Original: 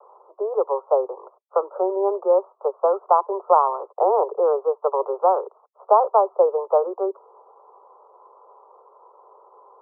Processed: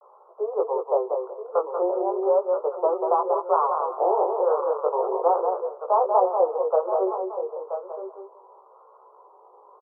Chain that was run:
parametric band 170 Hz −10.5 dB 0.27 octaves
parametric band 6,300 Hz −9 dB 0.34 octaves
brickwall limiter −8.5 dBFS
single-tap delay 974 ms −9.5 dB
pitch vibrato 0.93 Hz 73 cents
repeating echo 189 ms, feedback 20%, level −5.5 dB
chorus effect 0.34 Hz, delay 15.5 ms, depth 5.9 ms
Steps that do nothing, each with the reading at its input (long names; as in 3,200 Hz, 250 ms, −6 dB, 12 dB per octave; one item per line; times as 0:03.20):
parametric band 170 Hz: nothing at its input below 320 Hz
parametric band 6,300 Hz: nothing at its input above 1,400 Hz